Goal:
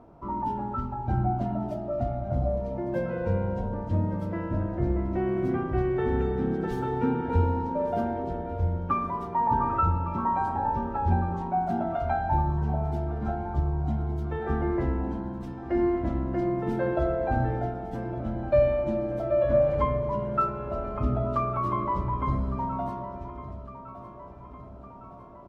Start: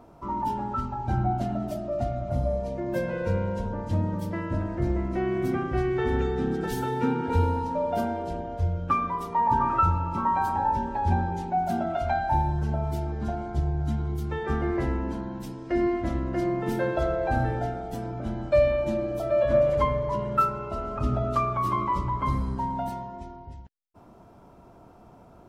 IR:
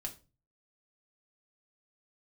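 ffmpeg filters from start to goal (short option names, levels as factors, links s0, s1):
-af "lowpass=f=1300:p=1,aecho=1:1:1158|2316|3474|4632|5790|6948:0.178|0.105|0.0619|0.0365|0.0215|0.0127"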